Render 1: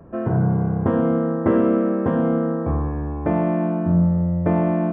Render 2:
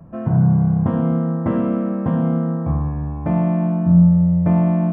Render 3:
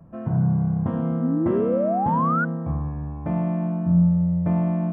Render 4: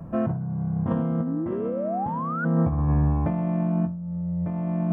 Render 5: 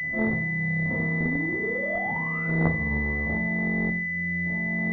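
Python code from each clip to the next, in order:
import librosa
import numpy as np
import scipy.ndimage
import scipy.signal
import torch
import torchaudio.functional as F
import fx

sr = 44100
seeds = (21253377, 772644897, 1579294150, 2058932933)

y1 = fx.graphic_eq_15(x, sr, hz=(160, 400, 1600), db=(8, -11, -5))
y2 = fx.spec_paint(y1, sr, seeds[0], shape='rise', start_s=1.2, length_s=1.25, low_hz=230.0, high_hz=1500.0, level_db=-17.0)
y2 = y2 * librosa.db_to_amplitude(-6.0)
y3 = fx.over_compress(y2, sr, threshold_db=-29.0, ratio=-1.0)
y3 = y3 * librosa.db_to_amplitude(3.5)
y4 = fx.rev_schroeder(y3, sr, rt60_s=0.56, comb_ms=25, drr_db=-8.0)
y4 = fx.cheby_harmonics(y4, sr, harmonics=(3, 5, 6, 8), levels_db=(-8, -16, -18, -20), full_scale_db=-3.5)
y4 = fx.pwm(y4, sr, carrier_hz=2000.0)
y4 = y4 * librosa.db_to_amplitude(-5.0)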